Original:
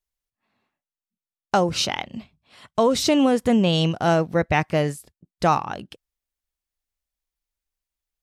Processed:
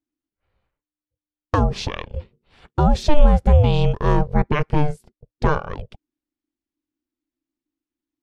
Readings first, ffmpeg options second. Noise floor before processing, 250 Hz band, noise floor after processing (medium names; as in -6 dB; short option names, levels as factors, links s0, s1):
under -85 dBFS, -2.5 dB, under -85 dBFS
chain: -af "aeval=exprs='val(0)*sin(2*PI*300*n/s)':c=same,aemphasis=mode=reproduction:type=bsi"